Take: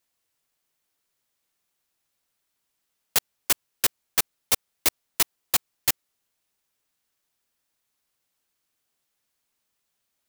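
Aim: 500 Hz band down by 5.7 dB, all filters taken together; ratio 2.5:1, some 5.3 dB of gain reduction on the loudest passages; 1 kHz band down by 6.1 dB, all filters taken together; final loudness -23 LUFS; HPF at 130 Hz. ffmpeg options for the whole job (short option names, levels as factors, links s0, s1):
-af "highpass=130,equalizer=f=500:t=o:g=-5.5,equalizer=f=1000:t=o:g=-6.5,acompressor=threshold=0.0562:ratio=2.5,volume=2.24"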